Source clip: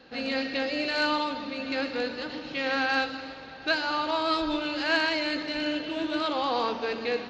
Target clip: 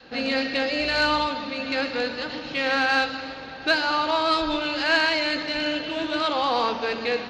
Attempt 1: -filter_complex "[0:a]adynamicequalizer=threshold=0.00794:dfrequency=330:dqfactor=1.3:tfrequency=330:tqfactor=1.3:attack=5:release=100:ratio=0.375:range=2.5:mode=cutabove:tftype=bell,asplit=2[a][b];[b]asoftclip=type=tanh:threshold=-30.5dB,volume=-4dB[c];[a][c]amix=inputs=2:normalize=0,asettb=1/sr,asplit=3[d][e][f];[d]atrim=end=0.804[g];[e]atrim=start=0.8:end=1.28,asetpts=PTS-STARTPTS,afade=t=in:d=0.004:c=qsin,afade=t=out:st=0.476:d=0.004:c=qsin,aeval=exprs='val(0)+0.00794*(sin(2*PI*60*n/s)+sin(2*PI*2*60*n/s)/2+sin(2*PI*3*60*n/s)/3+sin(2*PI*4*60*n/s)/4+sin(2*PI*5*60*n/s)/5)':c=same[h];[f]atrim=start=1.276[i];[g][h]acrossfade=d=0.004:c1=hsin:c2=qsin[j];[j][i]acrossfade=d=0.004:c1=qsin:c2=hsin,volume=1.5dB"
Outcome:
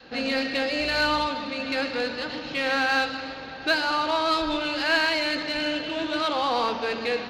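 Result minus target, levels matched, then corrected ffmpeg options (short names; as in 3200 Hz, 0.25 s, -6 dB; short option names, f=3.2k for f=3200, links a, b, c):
soft clip: distortion +10 dB
-filter_complex "[0:a]adynamicequalizer=threshold=0.00794:dfrequency=330:dqfactor=1.3:tfrequency=330:tqfactor=1.3:attack=5:release=100:ratio=0.375:range=2.5:mode=cutabove:tftype=bell,asplit=2[a][b];[b]asoftclip=type=tanh:threshold=-20dB,volume=-4dB[c];[a][c]amix=inputs=2:normalize=0,asettb=1/sr,asplit=3[d][e][f];[d]atrim=end=0.804[g];[e]atrim=start=0.8:end=1.28,asetpts=PTS-STARTPTS,afade=t=in:d=0.004:c=qsin,afade=t=out:st=0.476:d=0.004:c=qsin,aeval=exprs='val(0)+0.00794*(sin(2*PI*60*n/s)+sin(2*PI*2*60*n/s)/2+sin(2*PI*3*60*n/s)/3+sin(2*PI*4*60*n/s)/4+sin(2*PI*5*60*n/s)/5)':c=same[h];[f]atrim=start=1.276[i];[g][h]acrossfade=d=0.004:c1=hsin:c2=qsin[j];[j][i]acrossfade=d=0.004:c1=qsin:c2=hsin,volume=1.5dB"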